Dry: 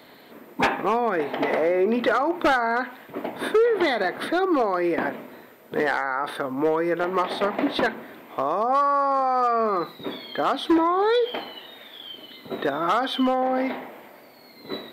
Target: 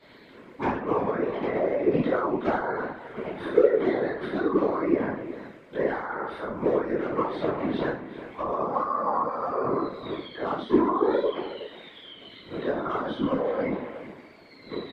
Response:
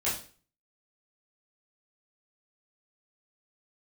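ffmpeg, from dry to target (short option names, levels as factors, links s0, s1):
-filter_complex "[0:a]lowpass=5600,equalizer=f=720:t=o:w=0.33:g=-12[s0];[1:a]atrim=start_sample=2205,afade=t=out:st=0.2:d=0.01,atrim=end_sample=9261[s1];[s0][s1]afir=irnorm=-1:irlink=0,acrossover=split=1200[s2][s3];[s3]acompressor=threshold=0.0178:ratio=6[s4];[s2][s4]amix=inputs=2:normalize=0,afftfilt=real='hypot(re,im)*cos(2*PI*random(0))':imag='hypot(re,im)*sin(2*PI*random(1))':win_size=512:overlap=0.75,asplit=2[s5][s6];[s6]adelay=367.3,volume=0.224,highshelf=f=4000:g=-8.27[s7];[s5][s7]amix=inputs=2:normalize=0,volume=0.75"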